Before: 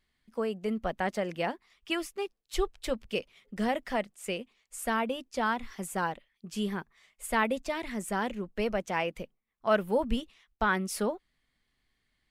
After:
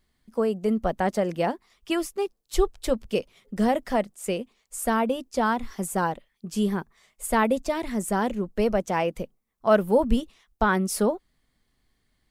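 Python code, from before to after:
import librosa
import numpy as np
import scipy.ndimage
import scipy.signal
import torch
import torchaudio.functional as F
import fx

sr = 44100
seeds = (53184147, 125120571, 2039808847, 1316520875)

y = fx.peak_eq(x, sr, hz=2400.0, db=-8.5, octaves=1.8)
y = F.gain(torch.from_numpy(y), 8.0).numpy()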